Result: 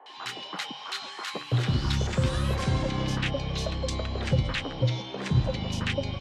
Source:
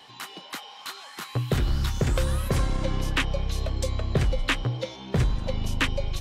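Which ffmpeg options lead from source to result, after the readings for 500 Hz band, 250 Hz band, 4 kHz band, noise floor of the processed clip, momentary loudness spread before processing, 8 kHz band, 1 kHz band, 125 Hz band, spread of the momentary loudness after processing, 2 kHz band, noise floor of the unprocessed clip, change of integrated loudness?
-1.0 dB, +1.0 dB, +1.0 dB, -42 dBFS, 12 LU, -3.0 dB, 0.0 dB, +0.5 dB, 8 LU, -3.0 dB, -46 dBFS, -1.0 dB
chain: -filter_complex "[0:a]highpass=100,lowpass=5.8k,acrossover=split=150[a][b];[b]alimiter=limit=-23dB:level=0:latency=1:release=98[c];[a][c]amix=inputs=2:normalize=0,bandreject=f=50:t=h:w=6,bandreject=f=100:t=h:w=6,bandreject=f=150:t=h:w=6,acrossover=split=360|1300[d][e][f];[f]adelay=60[g];[d]adelay=160[h];[h][e][g]amix=inputs=3:normalize=0,volume=5dB"

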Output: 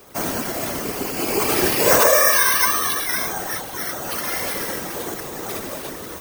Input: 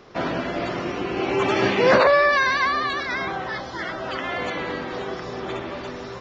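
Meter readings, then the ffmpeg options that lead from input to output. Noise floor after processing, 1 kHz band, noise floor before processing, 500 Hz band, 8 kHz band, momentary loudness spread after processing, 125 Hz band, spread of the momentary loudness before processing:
-33 dBFS, -1.0 dB, -35 dBFS, -1.0 dB, n/a, 16 LU, -1.0 dB, 15 LU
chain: -af "acrusher=samples=6:mix=1:aa=0.000001,afftfilt=real='hypot(re,im)*cos(2*PI*random(0))':imag='hypot(re,im)*sin(2*PI*random(1))':win_size=512:overlap=0.75,aemphasis=mode=production:type=50kf,volume=5dB"

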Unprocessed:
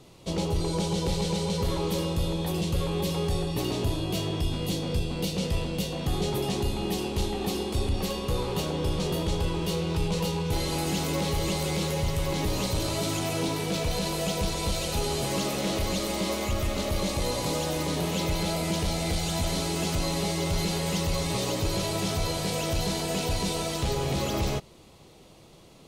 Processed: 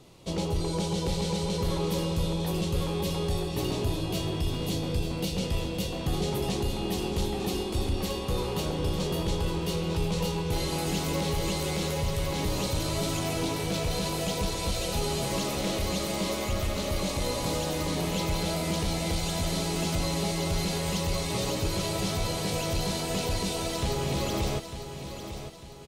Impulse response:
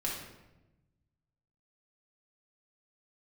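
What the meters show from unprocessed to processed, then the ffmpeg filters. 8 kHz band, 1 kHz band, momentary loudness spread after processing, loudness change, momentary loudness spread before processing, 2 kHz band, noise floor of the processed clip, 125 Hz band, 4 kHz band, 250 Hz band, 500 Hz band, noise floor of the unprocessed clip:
-1.0 dB, -1.0 dB, 2 LU, -1.0 dB, 2 LU, -1.0 dB, -37 dBFS, -1.0 dB, -1.0 dB, -1.0 dB, -1.0 dB, -52 dBFS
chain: -af "aecho=1:1:900|1800|2700|3600:0.316|0.126|0.0506|0.0202,volume=-1.5dB"

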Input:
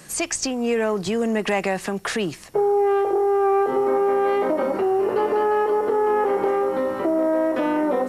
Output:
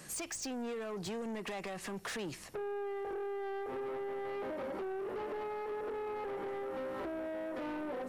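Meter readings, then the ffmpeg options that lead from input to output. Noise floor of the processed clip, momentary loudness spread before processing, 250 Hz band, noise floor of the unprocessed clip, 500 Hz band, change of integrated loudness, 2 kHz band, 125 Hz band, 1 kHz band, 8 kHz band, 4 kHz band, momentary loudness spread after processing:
-49 dBFS, 5 LU, -17.5 dB, -39 dBFS, -19.0 dB, -18.5 dB, -15.5 dB, -14.5 dB, -19.5 dB, n/a, -14.0 dB, 1 LU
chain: -af "acompressor=threshold=-25dB:ratio=6,asoftclip=type=tanh:threshold=-29.5dB,volume=-6.5dB"

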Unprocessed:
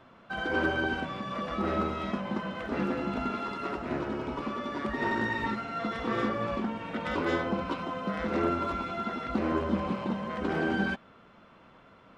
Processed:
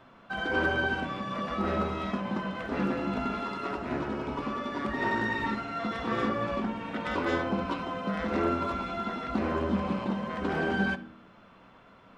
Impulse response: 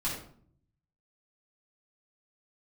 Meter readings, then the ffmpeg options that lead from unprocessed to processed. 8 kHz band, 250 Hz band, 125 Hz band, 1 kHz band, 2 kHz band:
n/a, +0.5 dB, +1.0 dB, +1.0 dB, +1.5 dB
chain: -filter_complex "[0:a]bandreject=f=45.67:t=h:w=4,bandreject=f=91.34:t=h:w=4,bandreject=f=137.01:t=h:w=4,bandreject=f=182.68:t=h:w=4,bandreject=f=228.35:t=h:w=4,bandreject=f=274.02:t=h:w=4,bandreject=f=319.69:t=h:w=4,bandreject=f=365.36:t=h:w=4,bandreject=f=411.03:t=h:w=4,bandreject=f=456.7:t=h:w=4,bandreject=f=502.37:t=h:w=4,bandreject=f=548.04:t=h:w=4,bandreject=f=593.71:t=h:w=4,asplit=2[a][b];[1:a]atrim=start_sample=2205[c];[b][c]afir=irnorm=-1:irlink=0,volume=-17.5dB[d];[a][d]amix=inputs=2:normalize=0"

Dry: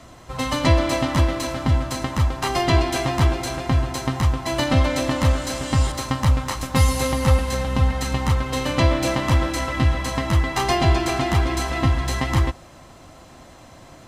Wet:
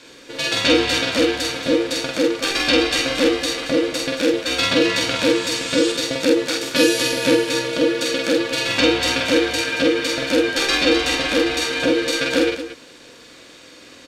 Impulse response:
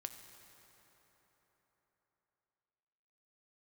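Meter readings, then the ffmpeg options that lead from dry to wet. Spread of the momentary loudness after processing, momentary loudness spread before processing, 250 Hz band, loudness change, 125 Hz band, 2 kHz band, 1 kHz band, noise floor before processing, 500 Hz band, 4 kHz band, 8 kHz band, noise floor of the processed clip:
4 LU, 5 LU, +4.5 dB, +3.0 dB, -17.0 dB, +7.0 dB, -4.0 dB, -45 dBFS, +7.0 dB, +9.5 dB, +5.0 dB, -44 dBFS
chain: -af "equalizer=f=125:t=o:w=1:g=5,equalizer=f=250:t=o:w=1:g=-6,equalizer=f=500:t=o:w=1:g=-8,equalizer=f=1k:t=o:w=1:g=-6,equalizer=f=2k:t=o:w=1:g=8,equalizer=f=4k:t=o:w=1:g=10,equalizer=f=8k:t=o:w=1:g=3,aeval=exprs='val(0)*sin(2*PI*400*n/s)':c=same,aecho=1:1:46.65|227.4:0.794|0.282"

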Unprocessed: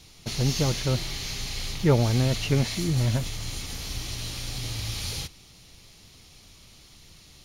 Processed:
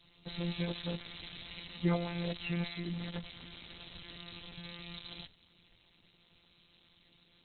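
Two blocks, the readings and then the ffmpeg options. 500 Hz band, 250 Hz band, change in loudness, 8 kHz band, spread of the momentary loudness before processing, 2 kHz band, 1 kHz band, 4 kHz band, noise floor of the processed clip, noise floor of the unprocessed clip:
-12.5 dB, -8.5 dB, -12.5 dB, under -40 dB, 11 LU, -8.5 dB, -10.5 dB, -12.0 dB, -68 dBFS, -52 dBFS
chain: -af "adynamicequalizer=threshold=0.0158:dfrequency=220:dqfactor=1.1:tfrequency=220:tqfactor=1.1:attack=5:release=100:ratio=0.375:range=3:mode=cutabove:tftype=bell,lowpass=f=5.2k:t=q:w=2.3,afftfilt=real='hypot(re,im)*cos(PI*b)':imag='0':win_size=1024:overlap=0.75,volume=-6dB" -ar 48000 -c:a libopus -b:a 6k

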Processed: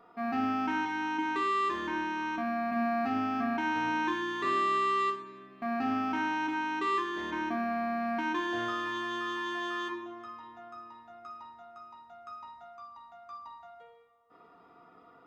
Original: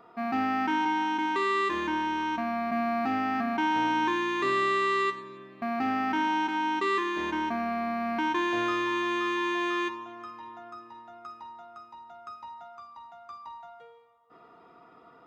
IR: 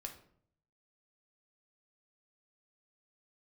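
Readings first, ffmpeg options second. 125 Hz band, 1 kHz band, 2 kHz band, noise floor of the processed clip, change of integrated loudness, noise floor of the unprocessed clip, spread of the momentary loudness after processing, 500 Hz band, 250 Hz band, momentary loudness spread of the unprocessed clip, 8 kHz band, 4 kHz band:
-2.5 dB, -3.5 dB, -3.5 dB, -58 dBFS, -3.5 dB, -55 dBFS, 19 LU, -4.5 dB, -3.0 dB, 19 LU, n/a, -4.5 dB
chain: -filter_complex "[1:a]atrim=start_sample=2205[a];[0:a][a]afir=irnorm=-1:irlink=0"

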